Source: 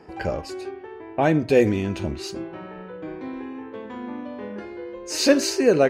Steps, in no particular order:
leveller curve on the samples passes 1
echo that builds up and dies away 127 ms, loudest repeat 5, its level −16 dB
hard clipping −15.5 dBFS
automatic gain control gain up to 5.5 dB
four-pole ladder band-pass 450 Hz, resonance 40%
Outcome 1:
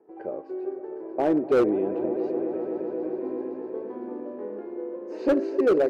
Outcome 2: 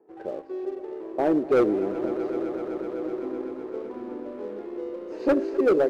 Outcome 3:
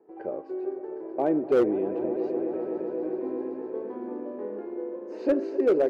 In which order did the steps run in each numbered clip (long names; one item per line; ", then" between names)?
leveller curve on the samples, then four-pole ladder band-pass, then automatic gain control, then echo that builds up and dies away, then hard clipping
four-pole ladder band-pass, then automatic gain control, then leveller curve on the samples, then hard clipping, then echo that builds up and dies away
automatic gain control, then echo that builds up and dies away, then leveller curve on the samples, then four-pole ladder band-pass, then hard clipping